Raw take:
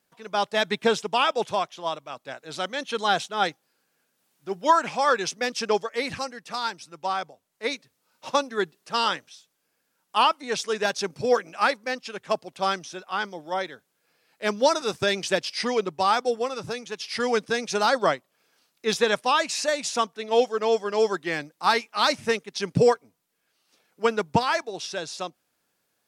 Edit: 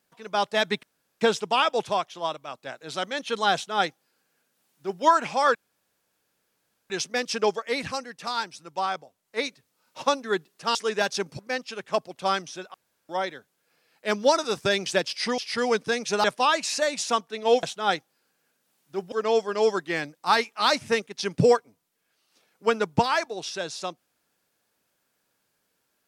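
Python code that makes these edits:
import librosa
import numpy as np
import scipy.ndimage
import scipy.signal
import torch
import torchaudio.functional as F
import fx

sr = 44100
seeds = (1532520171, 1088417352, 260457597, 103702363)

y = fx.edit(x, sr, fx.insert_room_tone(at_s=0.83, length_s=0.38),
    fx.duplicate(start_s=3.16, length_s=1.49, to_s=20.49),
    fx.insert_room_tone(at_s=5.17, length_s=1.35),
    fx.cut(start_s=9.02, length_s=1.57),
    fx.cut(start_s=11.23, length_s=0.53),
    fx.room_tone_fill(start_s=13.11, length_s=0.35),
    fx.cut(start_s=15.75, length_s=1.25),
    fx.cut(start_s=17.86, length_s=1.24), tone=tone)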